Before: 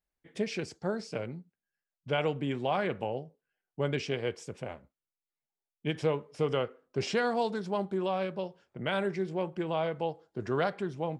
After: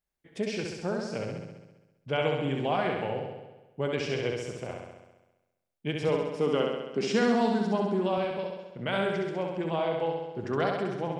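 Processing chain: 6.08–8.18 resonant low shelf 140 Hz -13.5 dB, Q 3; flutter echo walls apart 11.4 m, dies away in 1.1 s

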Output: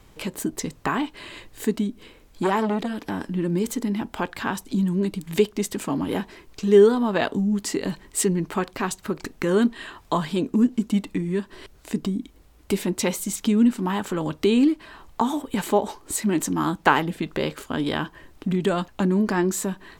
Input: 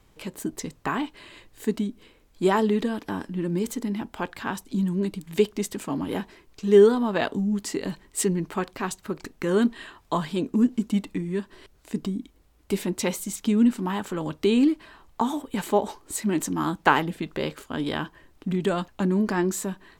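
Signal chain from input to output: in parallel at +2 dB: compressor, threshold -35 dBFS, peak gain reduction 22 dB; 2.43–3.21 on the sum: core saturation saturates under 850 Hz

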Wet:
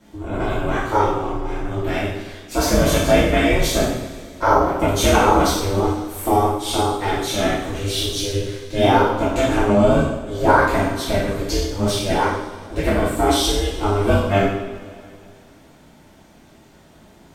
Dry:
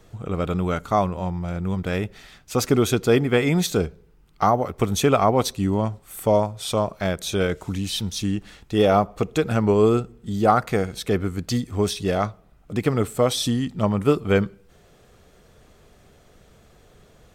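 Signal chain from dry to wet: spectral trails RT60 0.37 s; ring modulator 200 Hz; two-slope reverb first 0.65 s, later 2.6 s, from -16 dB, DRR -9 dB; gain -3 dB

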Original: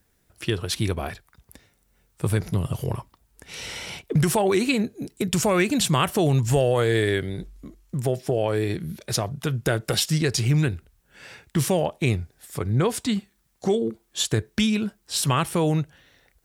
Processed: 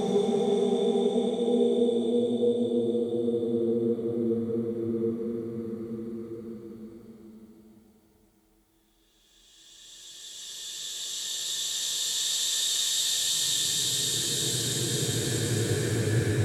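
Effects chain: in parallel at -2.5 dB: negative-ratio compressor -26 dBFS; on the sum: wow and flutter 78 cents; Paulstretch 26×, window 0.25 s, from 13.71; gain -6.5 dB

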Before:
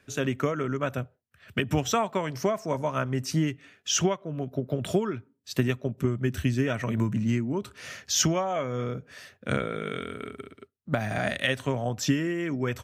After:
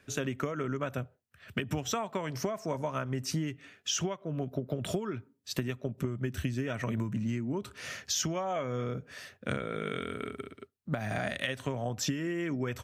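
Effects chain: compressor, threshold -29 dBFS, peak gain reduction 10.5 dB

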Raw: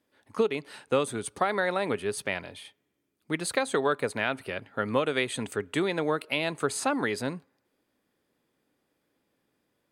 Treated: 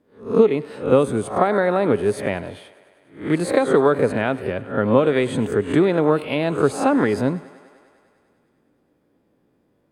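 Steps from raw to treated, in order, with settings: spectral swells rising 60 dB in 0.37 s; tilt shelf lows +8.5 dB, about 1200 Hz; on a send: thinning echo 0.1 s, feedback 77%, high-pass 210 Hz, level -20.5 dB; on the sum: gain +4 dB

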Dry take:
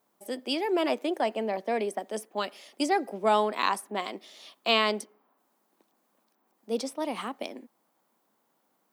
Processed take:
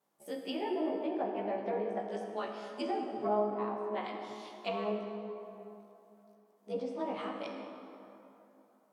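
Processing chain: short-time reversal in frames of 38 ms; treble ducked by the level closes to 670 Hz, closed at -25.5 dBFS; plate-style reverb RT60 3.1 s, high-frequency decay 0.55×, DRR 1.5 dB; gain -4 dB

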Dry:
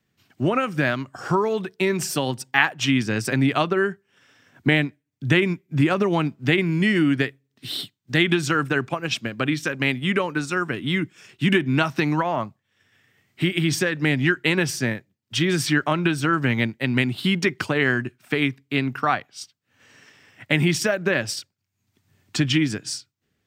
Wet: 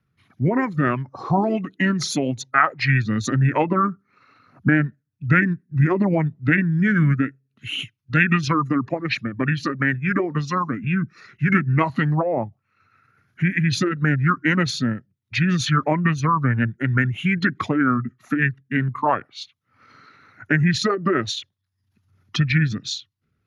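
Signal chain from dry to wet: formant sharpening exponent 1.5; formant shift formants -5 st; gain +2 dB

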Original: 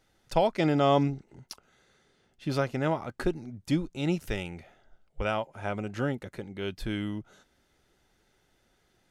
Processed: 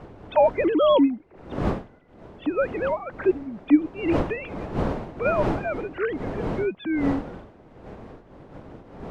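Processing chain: sine-wave speech; wind noise 480 Hz -38 dBFS; gain +5.5 dB

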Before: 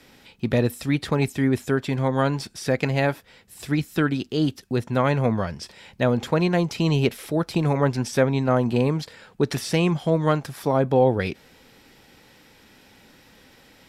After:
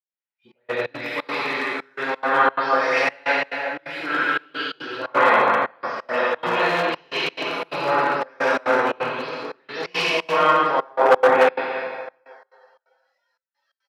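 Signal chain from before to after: spectral delay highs late, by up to 0.345 s; air absorption 300 m; on a send: tapped delay 57/58/92/151/309/424 ms -15.5/-19.5/-5.5/-7.5/-7.5/-19.5 dB; on the sum: plate-style reverb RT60 3 s, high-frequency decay 0.55×, DRR -9 dB; spectral noise reduction 18 dB; in parallel at +2 dB: compressor 12:1, threshold -22 dBFS, peak gain reduction 19.5 dB; on the sum: step gate "xxxxxx..xx.xxx." 175 bpm -24 dB; hard clip -2.5 dBFS, distortion -21 dB; HPF 970 Hz 12 dB/oct; three-band expander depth 100%; gain +1.5 dB

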